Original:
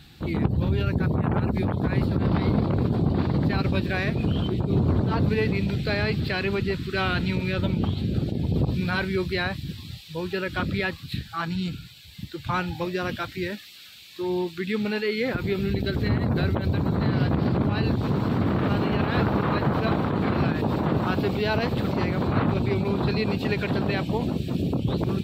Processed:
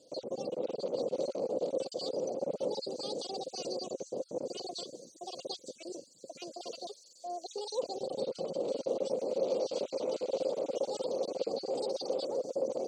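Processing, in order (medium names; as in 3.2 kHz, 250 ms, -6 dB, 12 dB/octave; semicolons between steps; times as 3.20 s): random holes in the spectrogram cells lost 27%; in parallel at -8.5 dB: saturation -23.5 dBFS, distortion -11 dB; on the sum: vowel filter i; wide varispeed 1.96×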